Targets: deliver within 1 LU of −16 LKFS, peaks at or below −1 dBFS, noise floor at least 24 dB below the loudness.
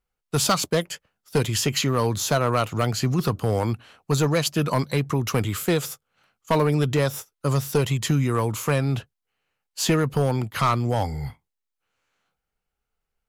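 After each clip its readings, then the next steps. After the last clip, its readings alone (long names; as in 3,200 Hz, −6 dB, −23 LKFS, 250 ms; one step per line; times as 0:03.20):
share of clipped samples 0.7%; peaks flattened at −13.5 dBFS; number of dropouts 2; longest dropout 1.1 ms; integrated loudness −23.5 LKFS; sample peak −13.5 dBFS; target loudness −16.0 LKFS
→ clipped peaks rebuilt −13.5 dBFS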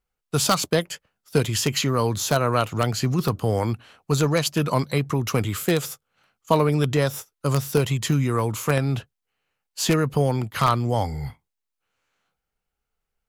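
share of clipped samples 0.0%; number of dropouts 2; longest dropout 1.1 ms
→ repair the gap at 0:06.97/0:08.39, 1.1 ms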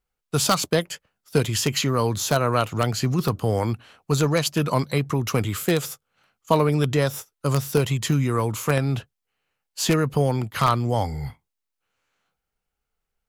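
number of dropouts 0; integrated loudness −23.0 LKFS; sample peak −4.5 dBFS; target loudness −16.0 LKFS
→ level +7 dB
brickwall limiter −1 dBFS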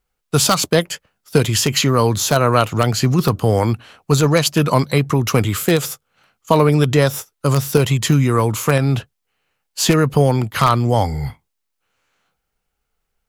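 integrated loudness −16.5 LKFS; sample peak −1.0 dBFS; background noise floor −75 dBFS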